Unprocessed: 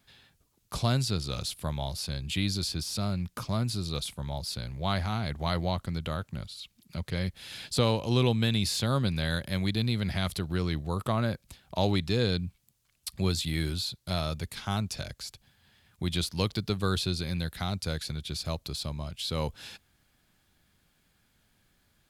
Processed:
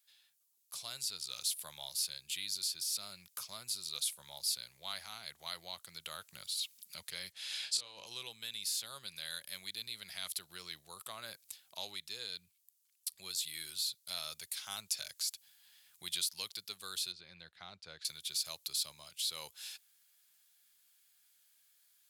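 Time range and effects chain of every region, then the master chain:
7.32–8.07 s: distance through air 71 m + compressor with a negative ratio -33 dBFS + doubling 33 ms -7.5 dB
17.12–18.05 s: expander -40 dBFS + tape spacing loss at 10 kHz 33 dB
whole clip: peaking EQ 260 Hz -11 dB 0.29 oct; gain riding 0.5 s; differentiator; trim +1 dB

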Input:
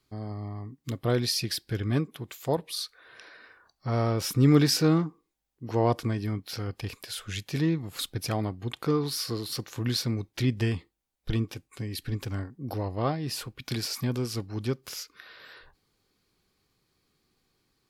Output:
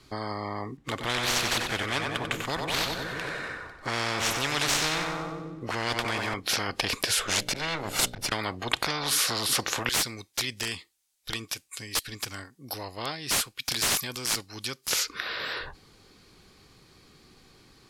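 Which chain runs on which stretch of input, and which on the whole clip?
0.77–6.34 s: median filter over 9 samples + bass shelf 170 Hz +9.5 dB + two-band feedback delay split 390 Hz, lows 127 ms, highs 93 ms, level -8 dB
7.27–8.32 s: comb filter that takes the minimum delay 1.4 ms + slow attack 247 ms + hum notches 60/120/180/240/300/360/420/480/540/600 Hz
9.89–14.91 s: pre-emphasis filter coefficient 0.97 + integer overflow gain 32 dB
whole clip: Bessel low-pass 8.8 kHz, order 2; spectrum-flattening compressor 10:1

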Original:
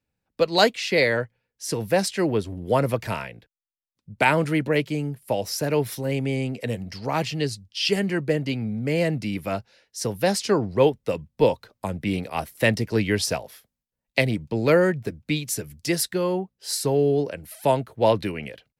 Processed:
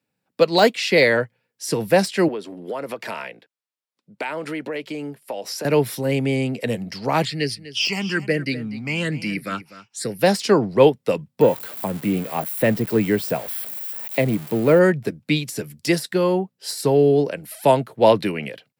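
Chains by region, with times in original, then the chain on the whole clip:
2.28–5.65 s: high-pass 300 Hz + treble shelf 8.2 kHz -9 dB + compression 5:1, threshold -30 dBFS
7.25–10.19 s: phase shifter stages 8, 1.1 Hz, lowest notch 480–1100 Hz + overdrive pedal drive 7 dB, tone 7.4 kHz, clips at -10 dBFS + delay 247 ms -15.5 dB
11.41–14.79 s: zero-crossing glitches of -18 dBFS + peaking EQ 5.8 kHz -7 dB 0.95 oct
whole clip: high-pass 130 Hz 24 dB/octave; band-stop 6.3 kHz, Q 15; de-esser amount 55%; trim +5 dB

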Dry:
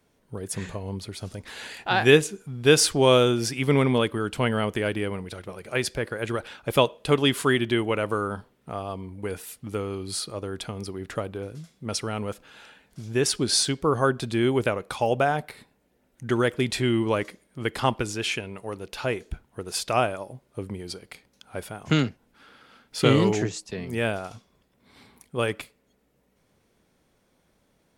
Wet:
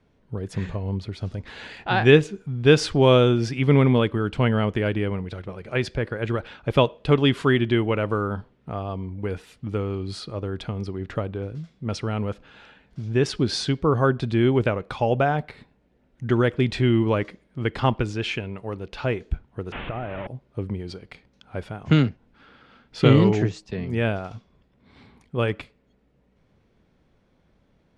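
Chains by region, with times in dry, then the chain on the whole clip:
19.72–20.27 s: one-bit delta coder 16 kbps, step -28 dBFS + compression 12:1, threshold -28 dBFS
whole clip: low-pass 3.9 kHz 12 dB/octave; bass shelf 210 Hz +9 dB

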